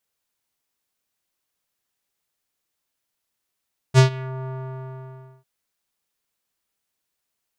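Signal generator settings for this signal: synth note square C3 12 dB/octave, low-pass 1.1 kHz, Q 1.4, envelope 3 oct, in 0.38 s, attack 44 ms, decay 0.11 s, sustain -21 dB, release 0.97 s, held 0.53 s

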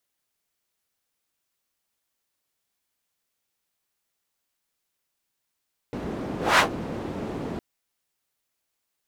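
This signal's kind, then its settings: whoosh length 1.66 s, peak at 0.66 s, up 0.22 s, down 0.11 s, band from 300 Hz, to 1.5 kHz, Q 0.99, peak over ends 15.5 dB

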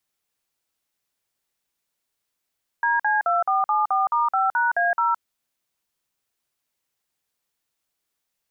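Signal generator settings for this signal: DTMF "DC2474*5#A0", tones 166 ms, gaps 49 ms, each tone -20.5 dBFS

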